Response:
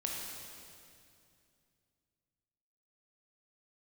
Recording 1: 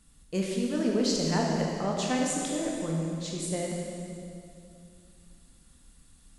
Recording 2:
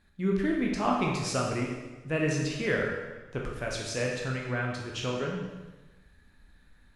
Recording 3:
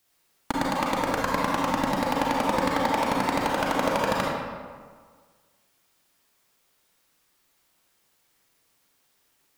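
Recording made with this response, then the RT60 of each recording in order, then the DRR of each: 1; 2.5, 1.2, 1.7 s; -2.0, -1.5, -4.0 dB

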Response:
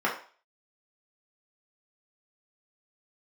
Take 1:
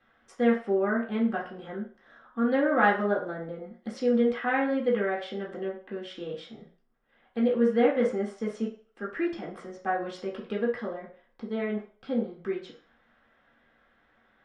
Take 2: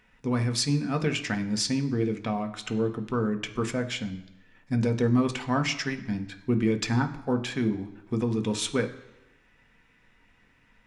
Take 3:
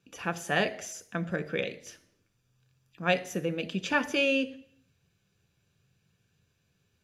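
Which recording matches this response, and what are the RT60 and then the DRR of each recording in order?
1; 0.40, 1.0, 0.60 s; -5.5, 5.5, 9.0 dB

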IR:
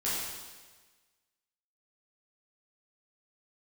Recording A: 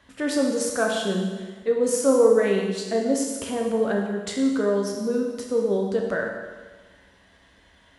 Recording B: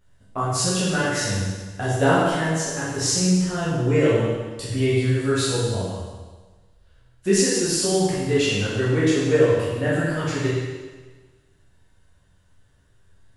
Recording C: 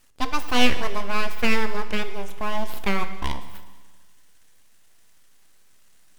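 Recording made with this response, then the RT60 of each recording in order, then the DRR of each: B; 1.4, 1.4, 1.4 s; -0.5, -9.5, 9.5 dB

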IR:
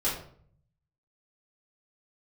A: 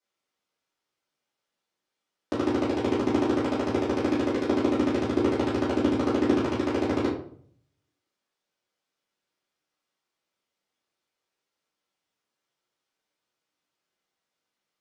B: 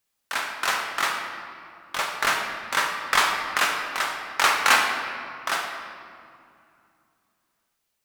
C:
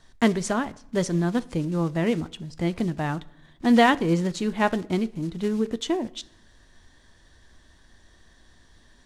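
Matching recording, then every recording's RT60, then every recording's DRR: A; 0.55, 2.5, 0.75 s; -11.0, 1.5, 14.0 dB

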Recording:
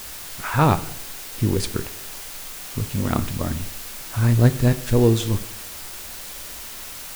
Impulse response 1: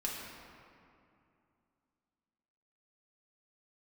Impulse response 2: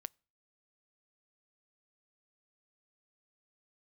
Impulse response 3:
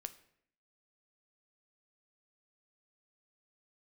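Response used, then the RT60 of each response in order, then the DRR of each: 3; 2.6, 0.40, 0.70 s; -4.0, 23.0, 10.5 dB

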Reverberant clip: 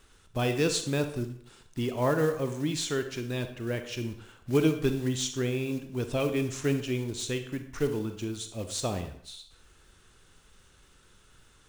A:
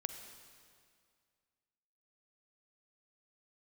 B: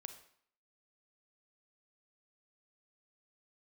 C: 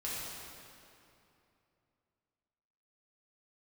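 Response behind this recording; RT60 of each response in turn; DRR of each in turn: B; 2.1, 0.60, 2.8 s; 7.5, 7.5, -8.5 dB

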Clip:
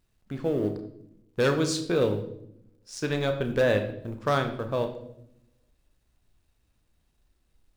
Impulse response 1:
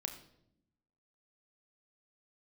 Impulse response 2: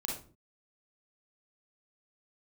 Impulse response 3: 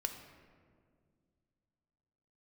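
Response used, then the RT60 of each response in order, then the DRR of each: 1; 0.75, 0.40, 2.0 s; 5.5, -1.5, 5.5 dB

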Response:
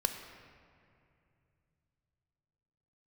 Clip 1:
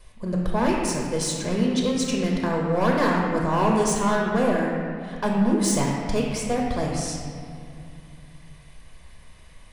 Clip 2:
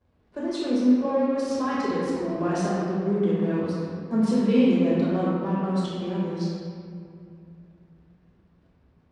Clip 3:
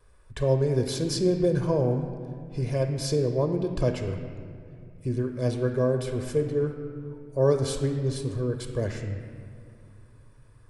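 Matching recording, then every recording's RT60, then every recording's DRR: 3; 2.6, 2.5, 2.6 s; -2.5, -9.0, 5.0 dB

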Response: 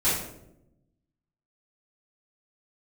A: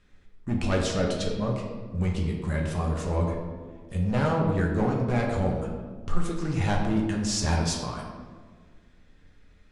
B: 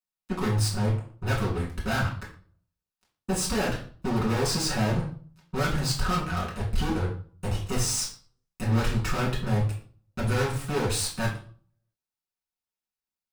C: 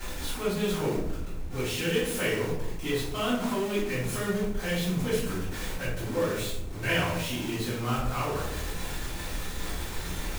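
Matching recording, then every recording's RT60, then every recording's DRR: C; 1.6, 0.45, 0.85 s; -1.0, -5.5, -12.5 dB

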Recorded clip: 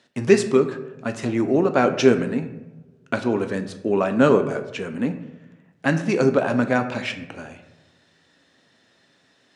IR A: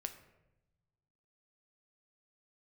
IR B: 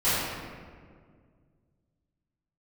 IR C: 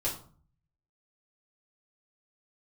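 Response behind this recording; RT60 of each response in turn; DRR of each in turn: A; 0.95, 1.9, 0.45 s; 7.0, -17.5, -7.0 dB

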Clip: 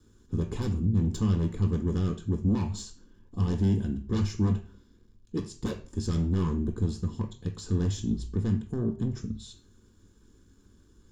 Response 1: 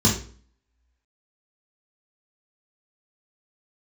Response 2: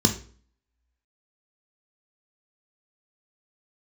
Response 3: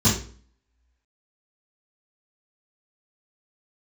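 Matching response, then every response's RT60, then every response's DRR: 2; 0.45, 0.45, 0.45 s; -4.5, 5.0, -13.0 dB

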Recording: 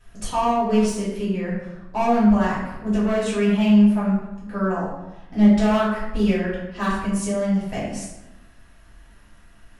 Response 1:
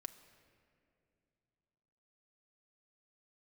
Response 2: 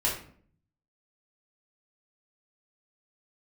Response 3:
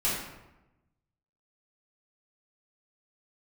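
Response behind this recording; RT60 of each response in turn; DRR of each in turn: 3; 2.5, 0.55, 1.0 s; 6.0, -6.0, -9.5 dB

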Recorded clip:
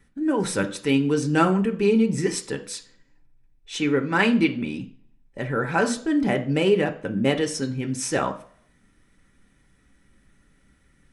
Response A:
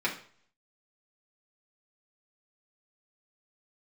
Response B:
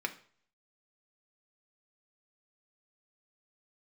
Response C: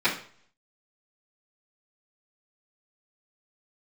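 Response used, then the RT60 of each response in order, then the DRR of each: B; 0.50, 0.50, 0.50 s; -5.5, 4.0, -14.0 dB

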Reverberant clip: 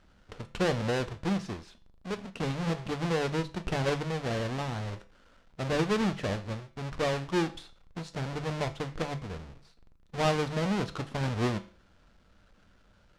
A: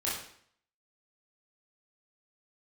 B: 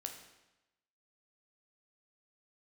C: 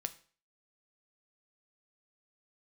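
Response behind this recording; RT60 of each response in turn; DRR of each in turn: C; 0.60, 1.0, 0.45 s; -7.5, 3.5, 9.5 dB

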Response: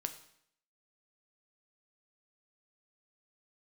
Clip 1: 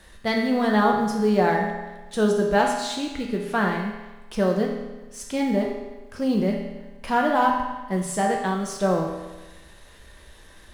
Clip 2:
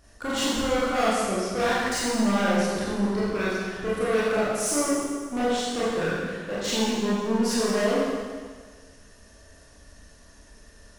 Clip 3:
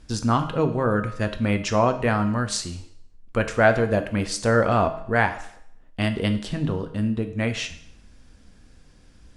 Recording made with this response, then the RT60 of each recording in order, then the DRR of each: 3; 1.2, 1.6, 0.70 s; -0.5, -9.5, 7.0 dB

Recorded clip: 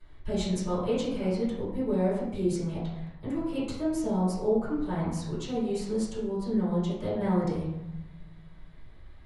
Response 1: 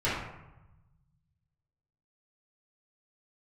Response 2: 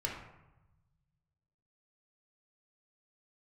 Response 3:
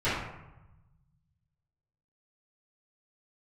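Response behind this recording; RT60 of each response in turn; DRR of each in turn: 1; 1.0, 1.0, 1.0 s; -11.5, -2.0, -16.0 dB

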